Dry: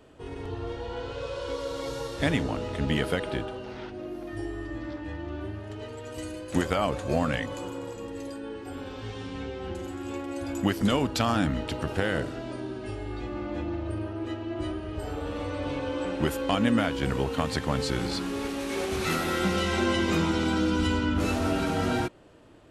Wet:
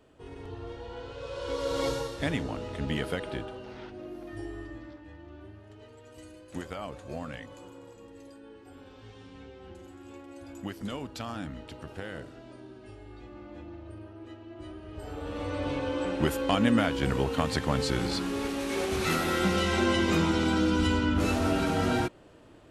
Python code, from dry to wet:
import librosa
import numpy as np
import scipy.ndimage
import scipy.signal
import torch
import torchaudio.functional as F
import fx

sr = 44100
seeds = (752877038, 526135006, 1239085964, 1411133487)

y = fx.gain(x, sr, db=fx.line((1.18, -6.0), (1.85, 5.5), (2.2, -4.5), (4.6, -4.5), (5.02, -12.0), (14.58, -12.0), (15.55, 0.0)))